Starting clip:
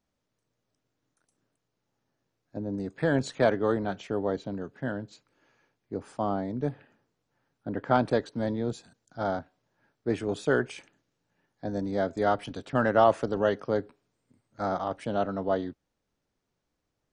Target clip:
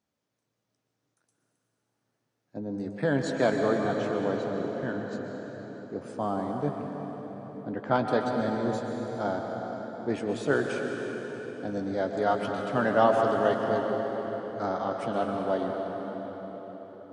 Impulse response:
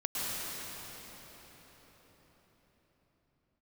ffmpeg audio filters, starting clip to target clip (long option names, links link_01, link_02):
-filter_complex "[0:a]highpass=100,asplit=2[link_01][link_02];[1:a]atrim=start_sample=2205,lowshelf=frequency=160:gain=-6.5,adelay=14[link_03];[link_02][link_03]afir=irnorm=-1:irlink=0,volume=-8dB[link_04];[link_01][link_04]amix=inputs=2:normalize=0,volume=-1.5dB"